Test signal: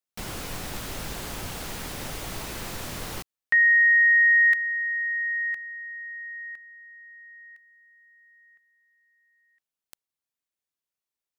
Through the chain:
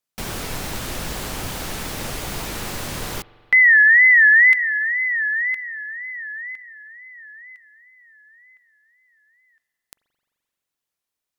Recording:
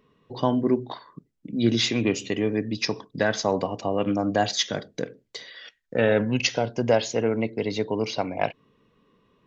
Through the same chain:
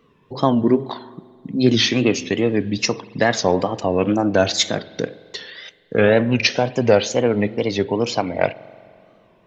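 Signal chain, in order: wow and flutter 150 cents; spring tank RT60 2.3 s, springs 43 ms, chirp 30 ms, DRR 19 dB; trim +6 dB

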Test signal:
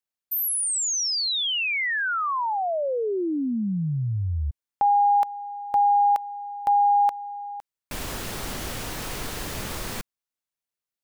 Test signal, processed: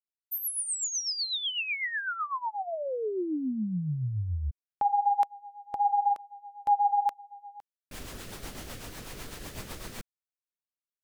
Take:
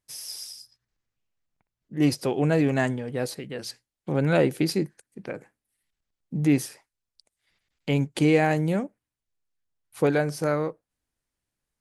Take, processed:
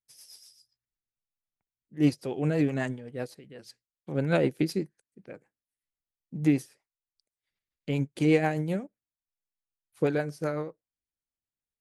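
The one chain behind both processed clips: rotary cabinet horn 8 Hz; upward expansion 1.5:1, over -45 dBFS

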